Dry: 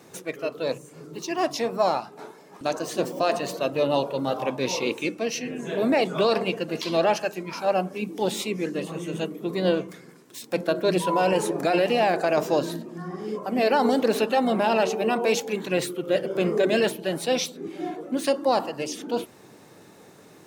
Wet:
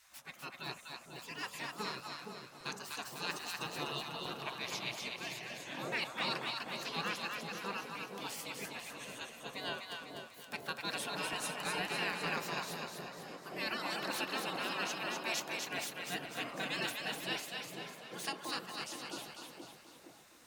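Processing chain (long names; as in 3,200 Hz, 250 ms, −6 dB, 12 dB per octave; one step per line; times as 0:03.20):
gate on every frequency bin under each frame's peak −15 dB weak
echo with a time of its own for lows and highs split 790 Hz, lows 465 ms, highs 249 ms, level −4 dB
level −6.5 dB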